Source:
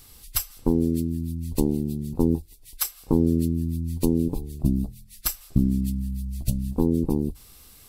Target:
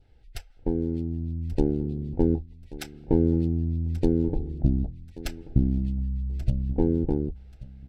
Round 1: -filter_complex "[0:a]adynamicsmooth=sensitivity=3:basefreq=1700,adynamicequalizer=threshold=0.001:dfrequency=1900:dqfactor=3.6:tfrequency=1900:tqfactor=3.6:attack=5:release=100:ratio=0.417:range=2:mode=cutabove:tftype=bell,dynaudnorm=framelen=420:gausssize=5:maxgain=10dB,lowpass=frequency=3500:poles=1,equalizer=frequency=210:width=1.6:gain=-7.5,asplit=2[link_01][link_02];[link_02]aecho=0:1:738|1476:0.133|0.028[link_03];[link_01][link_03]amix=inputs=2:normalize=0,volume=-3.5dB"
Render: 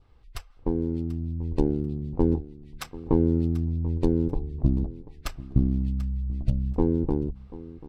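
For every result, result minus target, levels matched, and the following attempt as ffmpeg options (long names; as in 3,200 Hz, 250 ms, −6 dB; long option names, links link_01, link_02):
echo 395 ms early; 1,000 Hz band +3.5 dB
-filter_complex "[0:a]adynamicsmooth=sensitivity=3:basefreq=1700,adynamicequalizer=threshold=0.001:dfrequency=1900:dqfactor=3.6:tfrequency=1900:tqfactor=3.6:attack=5:release=100:ratio=0.417:range=2:mode=cutabove:tftype=bell,dynaudnorm=framelen=420:gausssize=5:maxgain=10dB,lowpass=frequency=3500:poles=1,equalizer=frequency=210:width=1.6:gain=-7.5,asplit=2[link_01][link_02];[link_02]aecho=0:1:1133|2266:0.133|0.028[link_03];[link_01][link_03]amix=inputs=2:normalize=0,volume=-3.5dB"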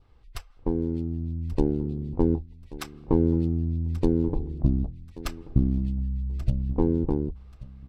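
1,000 Hz band +3.5 dB
-filter_complex "[0:a]adynamicsmooth=sensitivity=3:basefreq=1700,adynamicequalizer=threshold=0.001:dfrequency=1900:dqfactor=3.6:tfrequency=1900:tqfactor=3.6:attack=5:release=100:ratio=0.417:range=2:mode=cutabove:tftype=bell,asuperstop=centerf=1100:order=4:qfactor=2.1,dynaudnorm=framelen=420:gausssize=5:maxgain=10dB,lowpass=frequency=3500:poles=1,equalizer=frequency=210:width=1.6:gain=-7.5,asplit=2[link_01][link_02];[link_02]aecho=0:1:1133|2266:0.133|0.028[link_03];[link_01][link_03]amix=inputs=2:normalize=0,volume=-3.5dB"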